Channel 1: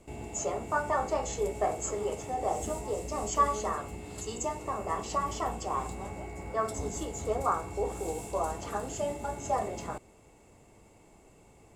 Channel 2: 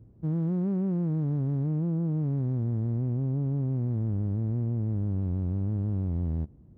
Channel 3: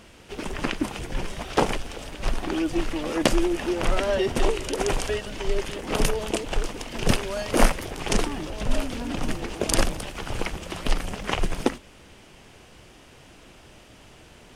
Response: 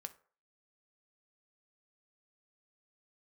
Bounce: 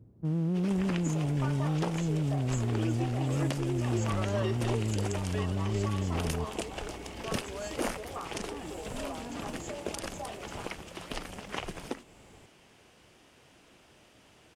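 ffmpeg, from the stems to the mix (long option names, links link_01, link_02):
-filter_complex "[0:a]acompressor=threshold=-45dB:ratio=2.5,adelay=700,volume=1dB[link_01];[1:a]highpass=frequency=93:poles=1,volume=-0.5dB[link_02];[2:a]highpass=frequency=120:poles=1,adelay=250,volume=-8.5dB[link_03];[link_01][link_02][link_03]amix=inputs=3:normalize=0,alimiter=limit=-19dB:level=0:latency=1:release=261"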